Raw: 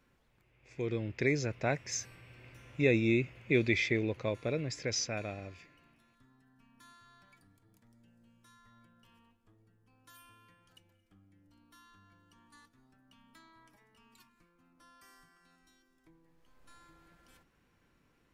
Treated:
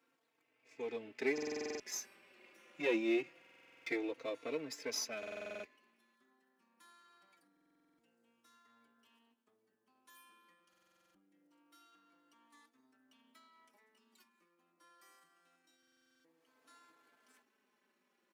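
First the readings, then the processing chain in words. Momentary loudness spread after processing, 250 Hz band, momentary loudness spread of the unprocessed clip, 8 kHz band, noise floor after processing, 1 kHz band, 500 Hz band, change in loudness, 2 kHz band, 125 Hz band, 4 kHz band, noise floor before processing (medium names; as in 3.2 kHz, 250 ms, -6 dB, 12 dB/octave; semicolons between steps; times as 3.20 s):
13 LU, -7.0 dB, 15 LU, -5.0 dB, -80 dBFS, -6.5 dB, -5.5 dB, -7.0 dB, -8.0 dB, -28.5 dB, -5.5 dB, -72 dBFS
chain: partial rectifier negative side -7 dB; high-pass 250 Hz 24 dB/octave; buffer glitch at 1.33/3.40/5.18/7.52/10.68/15.78 s, samples 2048, times 9; endless flanger 3.9 ms -0.25 Hz; trim +1 dB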